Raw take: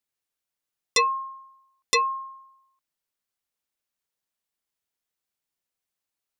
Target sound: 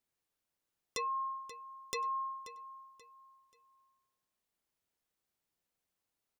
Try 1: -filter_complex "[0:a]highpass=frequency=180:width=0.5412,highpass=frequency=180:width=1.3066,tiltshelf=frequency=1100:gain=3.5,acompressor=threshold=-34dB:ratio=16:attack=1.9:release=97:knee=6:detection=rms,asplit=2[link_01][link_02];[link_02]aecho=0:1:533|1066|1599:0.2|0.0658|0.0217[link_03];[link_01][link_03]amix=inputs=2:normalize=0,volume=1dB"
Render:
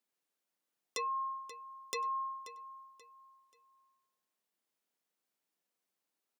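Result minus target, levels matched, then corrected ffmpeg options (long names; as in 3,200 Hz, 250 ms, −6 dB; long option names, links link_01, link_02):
250 Hz band −3.5 dB
-filter_complex "[0:a]tiltshelf=frequency=1100:gain=3.5,acompressor=threshold=-34dB:ratio=16:attack=1.9:release=97:knee=6:detection=rms,asplit=2[link_01][link_02];[link_02]aecho=0:1:533|1066|1599:0.2|0.0658|0.0217[link_03];[link_01][link_03]amix=inputs=2:normalize=0,volume=1dB"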